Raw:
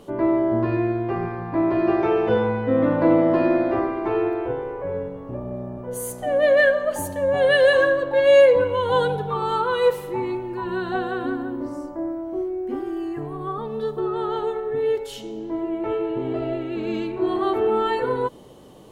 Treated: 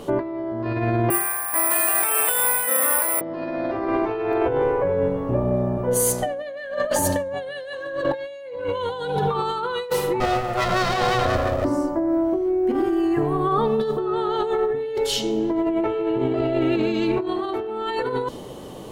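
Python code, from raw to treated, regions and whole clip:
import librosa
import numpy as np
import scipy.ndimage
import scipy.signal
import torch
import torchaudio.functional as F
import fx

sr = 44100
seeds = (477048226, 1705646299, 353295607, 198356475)

y = fx.chain(x, sr, fx.highpass(hz=1400.0, slope=12),
    fx.high_shelf(hz=6000.0, db=-8.0),
    fx.resample_bad(factor=4, down='none', up='zero_stuff'), at=(1.1, 3.21))
y = fx.chain(y, sr, fx.lower_of_two(delay_ms=1.6),
    fx.high_shelf(hz=5700.0, db=4.5), at=(10.2, 11.65))
y = fx.hum_notches(y, sr, base_hz=50, count=7)
y = fx.dynamic_eq(y, sr, hz=4900.0, q=1.2, threshold_db=-48.0, ratio=4.0, max_db=7)
y = fx.over_compress(y, sr, threshold_db=-29.0, ratio=-1.0)
y = y * 10.0 ** (5.0 / 20.0)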